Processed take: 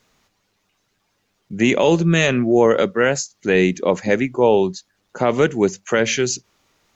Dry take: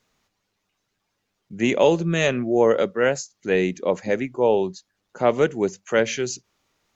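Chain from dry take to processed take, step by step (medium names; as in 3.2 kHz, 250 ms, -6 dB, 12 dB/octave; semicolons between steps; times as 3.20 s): dynamic bell 570 Hz, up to -4 dB, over -29 dBFS, Q 1.2; peak limiter -12 dBFS, peak gain reduction 5.5 dB; trim +7.5 dB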